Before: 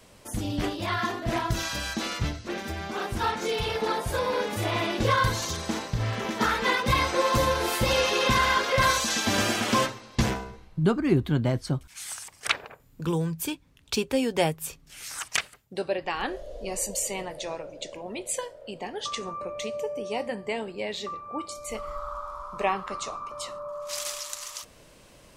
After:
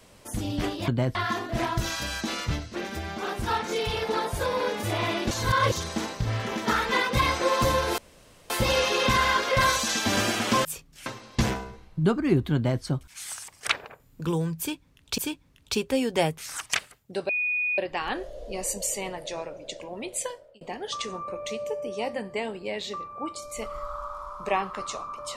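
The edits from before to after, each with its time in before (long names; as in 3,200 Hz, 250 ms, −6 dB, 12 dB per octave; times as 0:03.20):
0:05.04–0:05.45: reverse
0:07.71: splice in room tone 0.52 s
0:11.35–0:11.62: duplicate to 0:00.88
0:13.39–0:13.98: repeat, 2 plays
0:14.59–0:15.00: move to 0:09.86
0:15.91: insert tone 2,470 Hz −23.5 dBFS 0.49 s
0:18.27–0:18.74: fade out equal-power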